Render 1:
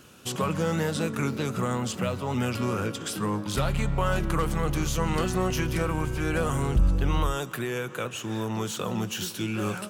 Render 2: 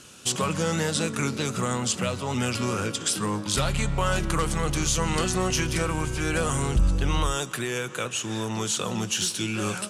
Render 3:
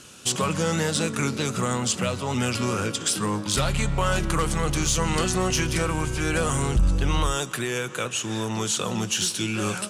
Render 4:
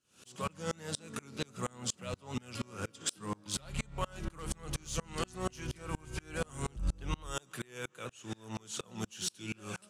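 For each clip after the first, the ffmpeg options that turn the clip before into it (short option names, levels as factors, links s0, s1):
-af "lowpass=f=10000:w=0.5412,lowpass=f=10000:w=1.3066,highshelf=f=3100:g=11.5"
-af "aeval=exprs='0.316*(cos(1*acos(clip(val(0)/0.316,-1,1)))-cos(1*PI/2))+0.0282*(cos(5*acos(clip(val(0)/0.316,-1,1)))-cos(5*PI/2))+0.0112*(cos(7*acos(clip(val(0)/0.316,-1,1)))-cos(7*PI/2))':c=same"
-af "aeval=exprs='val(0)*pow(10,-32*if(lt(mod(-4.2*n/s,1),2*abs(-4.2)/1000),1-mod(-4.2*n/s,1)/(2*abs(-4.2)/1000),(mod(-4.2*n/s,1)-2*abs(-4.2)/1000)/(1-2*abs(-4.2)/1000))/20)':c=same,volume=0.473"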